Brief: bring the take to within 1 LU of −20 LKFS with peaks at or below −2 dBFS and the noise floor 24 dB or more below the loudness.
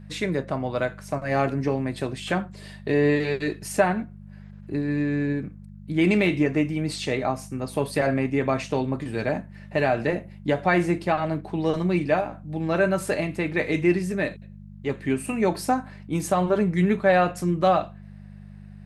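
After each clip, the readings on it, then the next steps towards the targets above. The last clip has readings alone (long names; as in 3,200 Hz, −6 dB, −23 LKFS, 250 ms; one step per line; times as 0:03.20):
mains hum 50 Hz; hum harmonics up to 200 Hz; level of the hum −42 dBFS; integrated loudness −25.0 LKFS; sample peak −7.5 dBFS; target loudness −20.0 LKFS
→ hum removal 50 Hz, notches 4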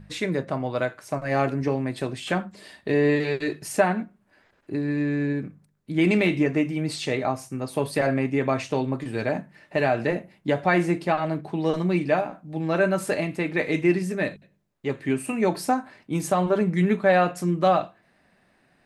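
mains hum none found; integrated loudness −25.0 LKFS; sample peak −7.5 dBFS; target loudness −20.0 LKFS
→ level +5 dB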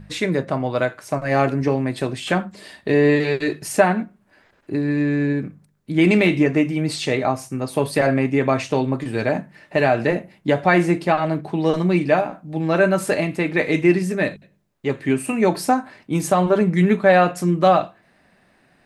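integrated loudness −20.0 LKFS; sample peak −2.5 dBFS; background noise floor −59 dBFS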